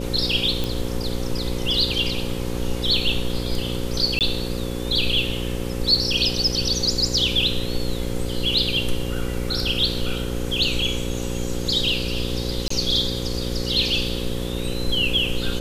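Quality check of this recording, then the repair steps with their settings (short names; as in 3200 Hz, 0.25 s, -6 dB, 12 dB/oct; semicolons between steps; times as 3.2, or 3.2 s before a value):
buzz 60 Hz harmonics 9 -28 dBFS
0.64 pop
4.19–4.21 gap 18 ms
12.68–12.7 gap 24 ms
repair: de-click; de-hum 60 Hz, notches 9; interpolate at 4.19, 18 ms; interpolate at 12.68, 24 ms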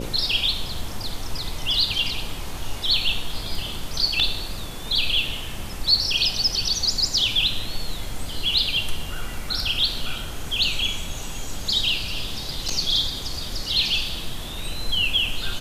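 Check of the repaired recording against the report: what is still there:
none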